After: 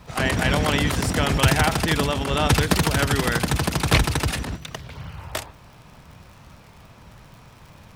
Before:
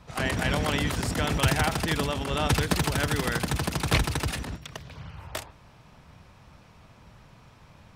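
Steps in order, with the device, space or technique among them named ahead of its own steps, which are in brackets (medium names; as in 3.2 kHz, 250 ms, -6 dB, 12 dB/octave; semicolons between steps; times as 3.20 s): warped LP (warped record 33 1/3 rpm, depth 100 cents; crackle 85 per s -45 dBFS; pink noise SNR 40 dB); trim +5.5 dB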